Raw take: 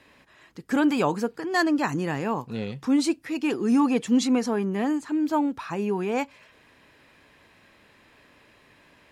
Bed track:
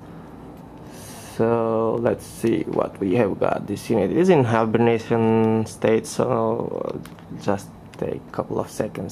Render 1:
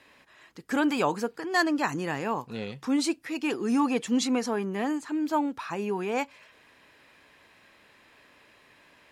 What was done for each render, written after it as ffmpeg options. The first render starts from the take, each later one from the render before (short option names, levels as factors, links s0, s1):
-af "lowshelf=f=330:g=-7.5"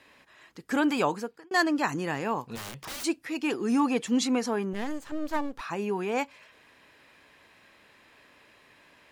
-filter_complex "[0:a]asplit=3[s0][s1][s2];[s0]afade=t=out:st=2.55:d=0.02[s3];[s1]aeval=exprs='(mod(44.7*val(0)+1,2)-1)/44.7':c=same,afade=t=in:st=2.55:d=0.02,afade=t=out:st=3.03:d=0.02[s4];[s2]afade=t=in:st=3.03:d=0.02[s5];[s3][s4][s5]amix=inputs=3:normalize=0,asettb=1/sr,asplit=3[s6][s7][s8];[s6]atrim=end=4.734[s9];[s7]atrim=start=4.73:end=5.61,asetpts=PTS-STARTPTS,afade=t=in:d=0.004:c=qsin,afade=t=out:st=0.876:d=0.004:c=qsin,aeval=exprs='max(val(0),0)':c=same[s10];[s8]atrim=start=5.606[s11];[s9][s10]acrossfade=d=0.004:c1=hsin:c2=qsin[s12];[s12][s11]acrossfade=d=0.004:c1=qsin:c2=hsin,asplit=2[s13][s14];[s13]atrim=end=1.51,asetpts=PTS-STARTPTS,afade=t=out:st=1.04:d=0.47[s15];[s14]atrim=start=1.51,asetpts=PTS-STARTPTS,afade=t=in:d=0.004:c=hsin[s16];[s15][s16]concat=n=2:v=0:a=1"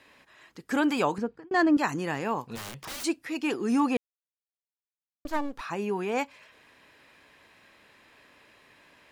-filter_complex "[0:a]asettb=1/sr,asplit=3[s0][s1][s2];[s0]atrim=end=1.184[s3];[s1]atrim=start=1.18:end=1.77,asetpts=PTS-STARTPTS,afade=t=in:d=0.004:c=qsin,afade=t=out:st=0.586:d=0.004:c=qsin,aemphasis=mode=reproduction:type=riaa[s4];[s2]atrim=start=1.766[s5];[s3][s4]acrossfade=d=0.004:c1=hsin:c2=qsin[s6];[s6][s5]acrossfade=d=0.004:c1=qsin:c2=hsin,asplit=3[s7][s8][s9];[s7]atrim=end=3.97,asetpts=PTS-STARTPTS,afade=t=out:st=3.966:d=0.004:c=hsin[s10];[s8]atrim=start=3.97:end=5.25,asetpts=PTS-STARTPTS,volume=0[s11];[s9]atrim=start=5.25,asetpts=PTS-STARTPTS,afade=t=in:d=0.004:c=hsin[s12];[s10][s11][s12]concat=n=3:v=0:a=1"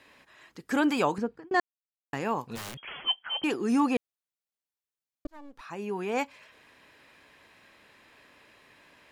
-filter_complex "[0:a]asettb=1/sr,asplit=3[s0][s1][s2];[s0]atrim=end=2.774[s3];[s1]atrim=start=2.77:end=3.44,asetpts=PTS-STARTPTS,afade=t=in:d=0.004:c=qsin,afade=t=out:st=0.666:d=0.004:c=qsin,lowpass=f=2900:t=q:w=0.5098,lowpass=f=2900:t=q:w=0.6013,lowpass=f=2900:t=q:w=0.9,lowpass=f=2900:t=q:w=2.563,afreqshift=-3400[s4];[s2]atrim=start=3.436[s5];[s3][s4]acrossfade=d=0.004:c1=hsin:c2=qsin[s6];[s6][s5]acrossfade=d=0.004:c1=qsin:c2=hsin,asplit=4[s7][s8][s9][s10];[s7]atrim=end=1.6,asetpts=PTS-STARTPTS,afade=t=out:st=1.596:d=0.004:c=hsin[s11];[s8]atrim=start=1.6:end=2.13,asetpts=PTS-STARTPTS,volume=0[s12];[s9]atrim=start=2.13:end=5.27,asetpts=PTS-STARTPTS,afade=t=in:d=0.004:c=hsin,afade=t=out:st=3.136:d=0.004:c=hsin[s13];[s10]atrim=start=5.27,asetpts=PTS-STARTPTS,afade=t=in:d=0.96[s14];[s11][s12][s13][s14]concat=n=4:v=0:a=1"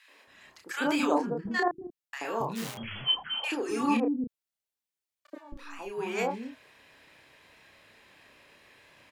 -filter_complex "[0:a]asplit=2[s0][s1];[s1]adelay=31,volume=0.596[s2];[s0][s2]amix=inputs=2:normalize=0,acrossover=split=280|1200[s3][s4][s5];[s4]adelay=80[s6];[s3]adelay=270[s7];[s7][s6][s5]amix=inputs=3:normalize=0"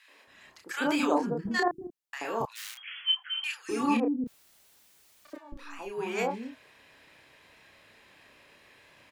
-filter_complex "[0:a]asettb=1/sr,asplit=3[s0][s1][s2];[s0]atrim=end=1.224[s3];[s1]atrim=start=1.22:end=1.88,asetpts=PTS-STARTPTS,afade=t=in:d=0.004:c=qsin,afade=t=out:st=0.656:d=0.004:c=qsin,bass=f=250:g=3,treble=f=4000:g=7[s4];[s2]atrim=start=1.876[s5];[s3][s4]acrossfade=d=0.004:c1=hsin:c2=qsin[s6];[s6][s5]acrossfade=d=0.004:c1=qsin:c2=hsin,asettb=1/sr,asplit=3[s7][s8][s9];[s7]atrim=end=2.454[s10];[s8]atrim=start=2.45:end=3.69,asetpts=PTS-STARTPTS,afade=t=in:d=0.004:c=qsin,afade=t=out:st=1.236:d=0.004:c=qsin,highpass=f=1500:w=0.5412,highpass=f=1500:w=1.3066[s11];[s9]atrim=start=3.686[s12];[s10][s11]acrossfade=d=0.004:c1=hsin:c2=qsin[s13];[s13][s12]acrossfade=d=0.004:c1=qsin:c2=hsin,asettb=1/sr,asplit=3[s14][s15][s16];[s14]atrim=end=4.264[s17];[s15]atrim=start=4.26:end=5.37,asetpts=PTS-STARTPTS,afade=t=in:d=0.004:c=qsin,afade=t=out:st=1.106:d=0.004:c=qsin,aeval=exprs='val(0)+0.5*0.00211*sgn(val(0))':c=same[s18];[s16]atrim=start=5.366[s19];[s17][s18]acrossfade=d=0.004:c1=hsin:c2=qsin[s20];[s20][s19]acrossfade=d=0.004:c1=qsin:c2=hsin"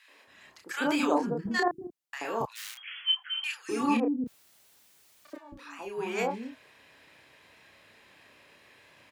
-af "highpass=57"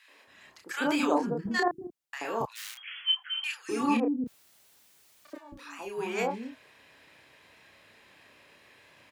-filter_complex "[0:a]asettb=1/sr,asplit=3[s0][s1][s2];[s0]atrim=end=5.364[s3];[s1]atrim=start=5.36:end=6.07,asetpts=PTS-STARTPTS,afade=t=in:d=0.004:c=qsin,afade=t=out:st=0.706:d=0.004:c=qsin,highshelf=f=4500:g=5.5[s4];[s2]atrim=start=6.066[s5];[s3][s4]acrossfade=d=0.004:c1=hsin:c2=qsin[s6];[s6][s5]acrossfade=d=0.004:c1=qsin:c2=hsin"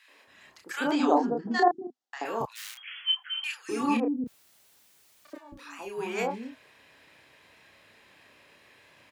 -filter_complex "[0:a]asplit=3[s0][s1][s2];[s0]afade=t=out:st=0.9:d=0.02[s3];[s1]highpass=240,equalizer=f=250:t=q:w=4:g=8,equalizer=f=400:t=q:w=4:g=4,equalizer=f=760:t=q:w=4:g=9,equalizer=f=2400:t=q:w=4:g=-8,lowpass=f=6600:w=0.5412,lowpass=f=6600:w=1.3066,afade=t=in:st=0.9:d=0.02,afade=t=out:st=2.24:d=0.02[s4];[s2]afade=t=in:st=2.24:d=0.02[s5];[s3][s4][s5]amix=inputs=3:normalize=0"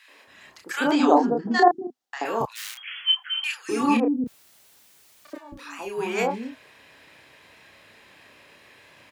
-af "volume=1.88"